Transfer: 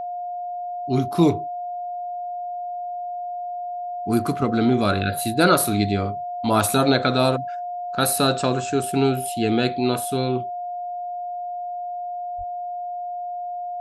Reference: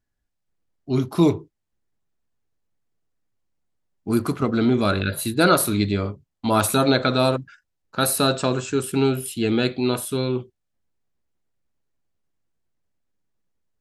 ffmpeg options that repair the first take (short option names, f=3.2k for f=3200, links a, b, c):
-filter_complex "[0:a]bandreject=f=710:w=30,asplit=3[a][b][c];[a]afade=t=out:st=12.37:d=0.02[d];[b]highpass=f=140:w=0.5412,highpass=f=140:w=1.3066,afade=t=in:st=12.37:d=0.02,afade=t=out:st=12.49:d=0.02[e];[c]afade=t=in:st=12.49:d=0.02[f];[d][e][f]amix=inputs=3:normalize=0"